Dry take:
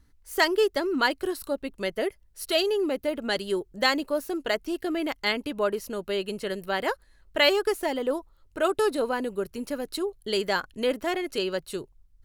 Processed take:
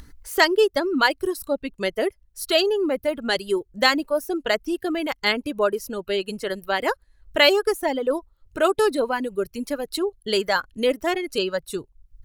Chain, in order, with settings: upward compressor, threshold -38 dBFS; reverb removal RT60 1.5 s; gain +5 dB

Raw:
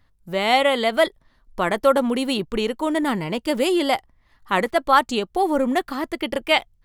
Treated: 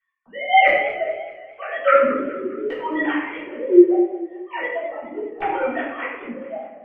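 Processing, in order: sine-wave speech; bell 360 Hz -9 dB 1.3 oct; LFO low-pass square 0.74 Hz 330–2400 Hz; harmonic tremolo 2.4 Hz, depth 70%, crossover 410 Hz; shoebox room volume 240 m³, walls mixed, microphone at 3.6 m; warbling echo 0.209 s, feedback 48%, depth 113 cents, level -14.5 dB; gain -5 dB

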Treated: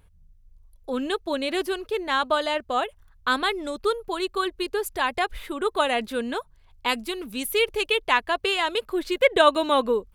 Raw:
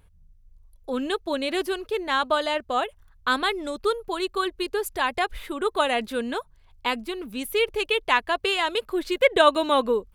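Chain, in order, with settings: 6.88–7.96 bell 10000 Hz +9 dB -> +2.5 dB 2.7 oct

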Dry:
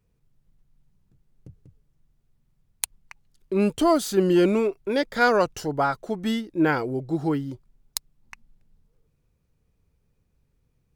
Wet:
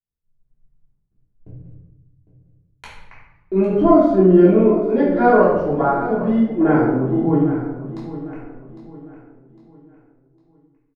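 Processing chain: expander -50 dBFS; LPF 1700 Hz 12 dB/oct, from 3.59 s 1000 Hz; feedback echo 0.805 s, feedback 38%, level -14 dB; shoebox room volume 320 m³, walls mixed, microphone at 3.2 m; gain -1.5 dB

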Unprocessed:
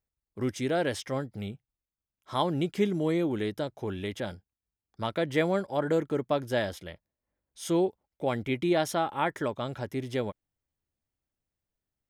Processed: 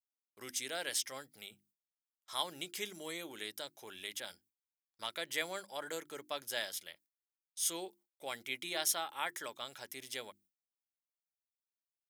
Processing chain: notches 50/100/150/200/250/300/350 Hz; gate with hold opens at -48 dBFS; differentiator; gain +6.5 dB

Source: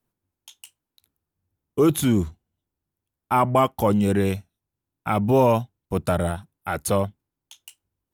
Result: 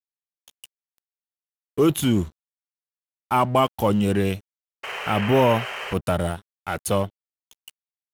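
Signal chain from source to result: dynamic EQ 2900 Hz, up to +8 dB, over -54 dBFS, Q 5; painted sound noise, 4.83–5.94, 380–3200 Hz -30 dBFS; crossover distortion -40.5 dBFS

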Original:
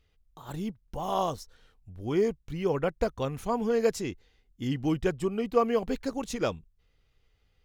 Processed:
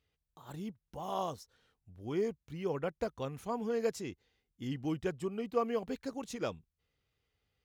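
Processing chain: HPF 78 Hz 12 dB/oct; gain -7.5 dB

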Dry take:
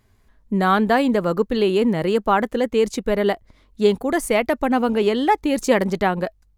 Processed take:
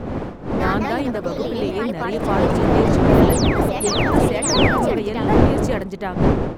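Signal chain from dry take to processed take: wind noise 380 Hz -14 dBFS; painted sound fall, 4.42–5, 260–10000 Hz -15 dBFS; echoes that change speed 86 ms, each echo +3 st, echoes 2; gain -7 dB

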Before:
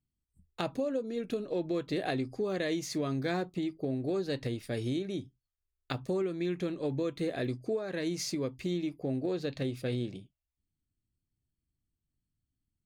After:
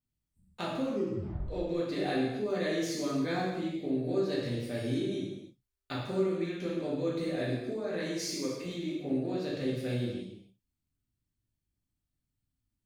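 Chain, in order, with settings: 0.82 tape stop 0.66 s; 8.06–8.66 HPF 240 Hz 6 dB/oct; reverb, pre-delay 3 ms, DRR -6 dB; gain -6 dB

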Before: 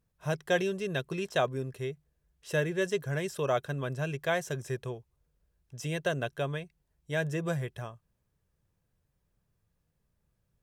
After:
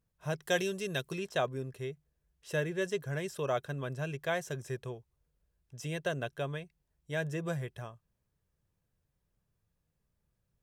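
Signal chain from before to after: 0.42–1.18 high shelf 3900 Hz +11 dB; gain -3.5 dB

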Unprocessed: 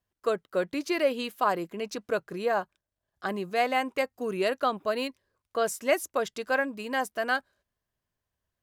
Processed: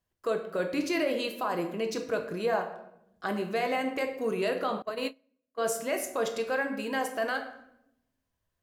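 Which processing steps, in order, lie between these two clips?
limiter -21.5 dBFS, peak gain reduction 9.5 dB; shoebox room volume 220 m³, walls mixed, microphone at 0.65 m; 4.82–5.64 gate -29 dBFS, range -26 dB

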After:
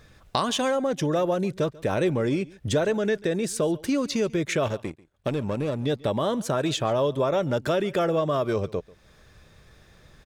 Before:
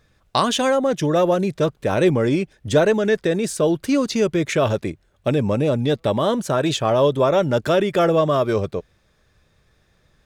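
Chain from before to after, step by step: compressor 2:1, threshold -40 dBFS, peak gain reduction 15.5 dB; 4.68–5.86 power-law curve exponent 1.4; on a send: echo 0.14 s -22.5 dB; on the sum: gain +7 dB

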